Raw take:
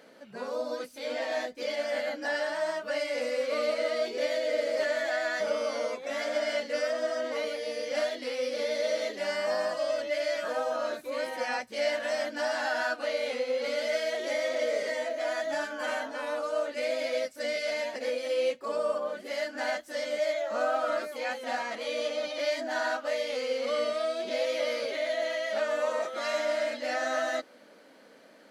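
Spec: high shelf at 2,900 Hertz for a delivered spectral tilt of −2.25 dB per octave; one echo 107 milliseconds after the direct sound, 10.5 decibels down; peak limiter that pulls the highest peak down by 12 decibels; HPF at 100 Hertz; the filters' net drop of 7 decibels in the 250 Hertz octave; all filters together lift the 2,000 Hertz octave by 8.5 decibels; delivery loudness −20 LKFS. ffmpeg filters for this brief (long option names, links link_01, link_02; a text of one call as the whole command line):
ffmpeg -i in.wav -af "highpass=100,equalizer=frequency=250:width_type=o:gain=-8.5,equalizer=frequency=2000:width_type=o:gain=7,highshelf=frequency=2900:gain=9,alimiter=level_in=1dB:limit=-24dB:level=0:latency=1,volume=-1dB,aecho=1:1:107:0.299,volume=12dB" out.wav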